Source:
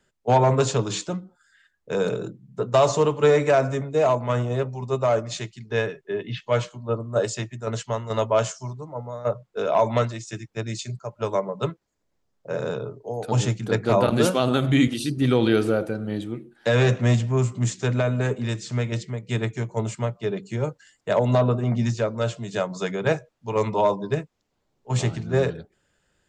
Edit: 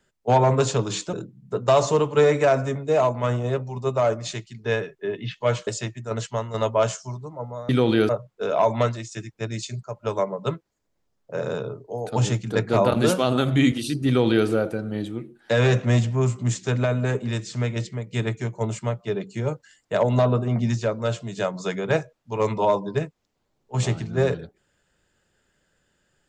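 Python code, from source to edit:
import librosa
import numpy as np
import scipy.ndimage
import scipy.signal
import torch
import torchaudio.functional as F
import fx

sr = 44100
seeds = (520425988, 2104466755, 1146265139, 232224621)

y = fx.edit(x, sr, fx.cut(start_s=1.13, length_s=1.06),
    fx.cut(start_s=6.73, length_s=0.5),
    fx.duplicate(start_s=15.23, length_s=0.4, to_s=9.25), tone=tone)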